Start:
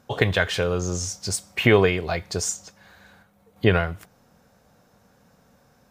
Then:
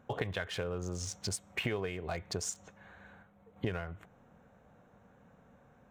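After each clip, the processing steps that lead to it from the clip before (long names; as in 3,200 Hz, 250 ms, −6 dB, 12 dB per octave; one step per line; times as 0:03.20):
adaptive Wiener filter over 9 samples
downward compressor 5 to 1, threshold −31 dBFS, peak gain reduction 17.5 dB
level −2.5 dB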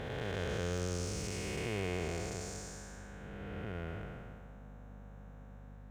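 spectrum smeared in time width 690 ms
mains hum 50 Hz, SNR 11 dB
level +5 dB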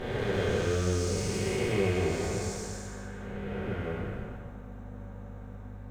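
rectangular room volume 41 cubic metres, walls mixed, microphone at 1.2 metres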